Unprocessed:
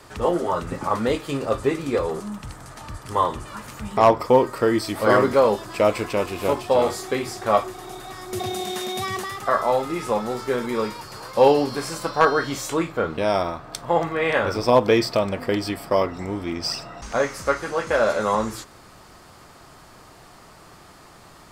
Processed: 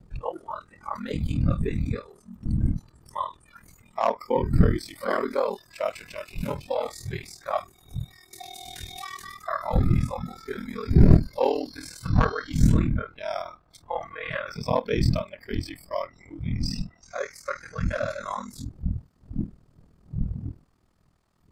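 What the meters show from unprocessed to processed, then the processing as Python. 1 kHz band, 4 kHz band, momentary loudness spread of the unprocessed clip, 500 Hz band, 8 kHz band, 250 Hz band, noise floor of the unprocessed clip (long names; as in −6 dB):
−9.0 dB, −9.0 dB, 13 LU, −10.0 dB, −9.5 dB, −2.0 dB, −48 dBFS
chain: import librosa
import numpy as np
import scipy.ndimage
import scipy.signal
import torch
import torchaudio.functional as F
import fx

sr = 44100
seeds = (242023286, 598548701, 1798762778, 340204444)

y = fx.dmg_wind(x, sr, seeds[0], corner_hz=150.0, level_db=-18.0)
y = fx.noise_reduce_blind(y, sr, reduce_db=18)
y = y * np.sin(2.0 * np.pi * 20.0 * np.arange(len(y)) / sr)
y = y * 10.0 ** (-5.5 / 20.0)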